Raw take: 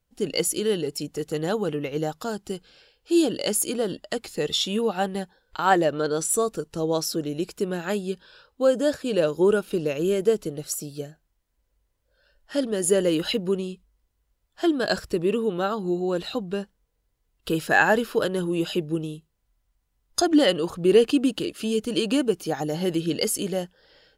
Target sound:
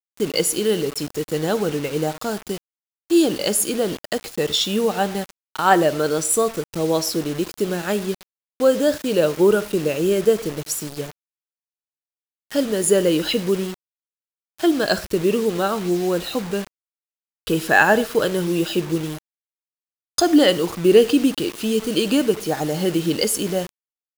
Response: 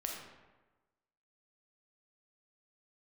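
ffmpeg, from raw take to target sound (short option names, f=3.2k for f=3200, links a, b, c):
-filter_complex "[0:a]asplit=2[a][b];[1:a]atrim=start_sample=2205,atrim=end_sample=6174[c];[b][c]afir=irnorm=-1:irlink=0,volume=-11dB[d];[a][d]amix=inputs=2:normalize=0,acrusher=bits=5:mix=0:aa=0.000001,volume=2.5dB"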